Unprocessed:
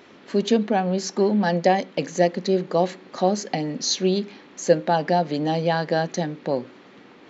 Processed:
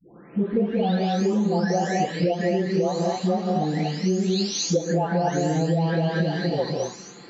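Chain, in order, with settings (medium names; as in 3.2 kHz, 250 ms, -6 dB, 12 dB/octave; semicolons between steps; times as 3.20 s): delay that grows with frequency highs late, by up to 921 ms; bass shelf 220 Hz +7 dB; gated-style reverb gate 270 ms rising, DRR 2.5 dB; compression, threshold -21 dBFS, peak gain reduction 11 dB; trim +2 dB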